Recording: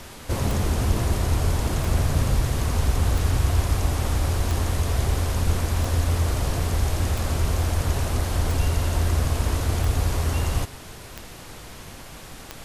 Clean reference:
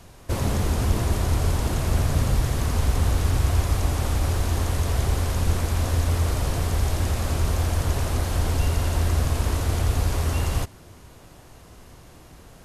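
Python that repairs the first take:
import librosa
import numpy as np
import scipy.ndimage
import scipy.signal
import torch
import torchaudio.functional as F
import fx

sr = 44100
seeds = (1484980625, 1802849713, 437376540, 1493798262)

y = fx.fix_declick_ar(x, sr, threshold=10.0)
y = fx.noise_reduce(y, sr, print_start_s=11.98, print_end_s=12.48, reduce_db=6.0)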